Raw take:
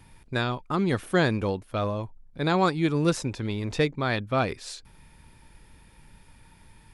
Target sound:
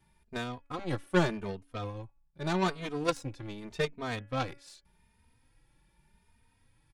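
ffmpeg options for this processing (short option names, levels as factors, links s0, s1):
-filter_complex "[0:a]bandreject=f=282.2:t=h:w=4,bandreject=f=564.4:t=h:w=4,bandreject=f=846.6:t=h:w=4,bandreject=f=1128.8:t=h:w=4,bandreject=f=1411:t=h:w=4,bandreject=f=1693.2:t=h:w=4,bandreject=f=1975.4:t=h:w=4,bandreject=f=2257.6:t=h:w=4,bandreject=f=2539.8:t=h:w=4,bandreject=f=2822:t=h:w=4,bandreject=f=3104.2:t=h:w=4,asplit=2[s0][s1];[s1]asoftclip=type=hard:threshold=0.0841,volume=0.299[s2];[s0][s2]amix=inputs=2:normalize=0,aeval=exprs='0.376*(cos(1*acos(clip(val(0)/0.376,-1,1)))-cos(1*PI/2))+0.106*(cos(3*acos(clip(val(0)/0.376,-1,1)))-cos(3*PI/2))+0.00422*(cos(8*acos(clip(val(0)/0.376,-1,1)))-cos(8*PI/2))':c=same,asplit=2[s3][s4];[s4]adelay=3,afreqshift=0.84[s5];[s3][s5]amix=inputs=2:normalize=1,volume=1.41"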